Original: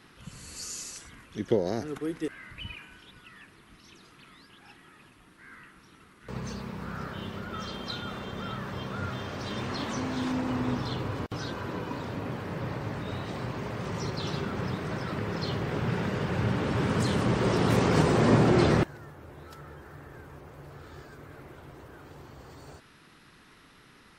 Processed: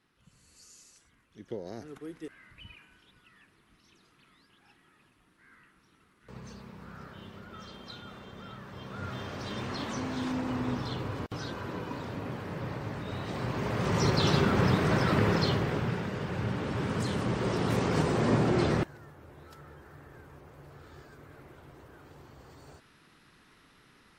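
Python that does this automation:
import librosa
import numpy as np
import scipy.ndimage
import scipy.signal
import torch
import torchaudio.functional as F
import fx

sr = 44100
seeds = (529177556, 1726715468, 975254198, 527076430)

y = fx.gain(x, sr, db=fx.line((1.25, -17.0), (1.83, -9.5), (8.68, -9.5), (9.18, -2.5), (13.08, -2.5), (14.09, 7.5), (15.27, 7.5), (16.05, -4.5)))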